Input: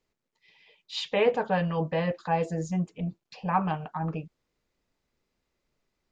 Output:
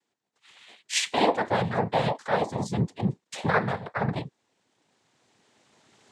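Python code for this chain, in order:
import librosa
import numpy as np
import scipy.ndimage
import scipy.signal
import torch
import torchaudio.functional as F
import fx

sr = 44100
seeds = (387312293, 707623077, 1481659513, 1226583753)

y = fx.recorder_agc(x, sr, target_db=-16.5, rise_db_per_s=8.9, max_gain_db=30)
y = fx.highpass(y, sr, hz=210.0, slope=6)
y = fx.noise_vocoder(y, sr, seeds[0], bands=6)
y = y * 10.0 ** (2.0 / 20.0)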